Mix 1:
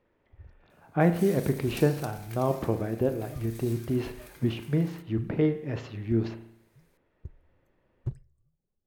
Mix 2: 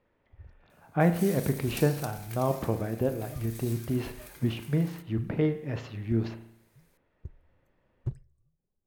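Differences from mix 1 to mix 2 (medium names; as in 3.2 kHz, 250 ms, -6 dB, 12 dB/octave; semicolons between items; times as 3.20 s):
speech: add peaking EQ 360 Hz -4 dB 0.62 oct; second sound: add treble shelf 5.8 kHz +5 dB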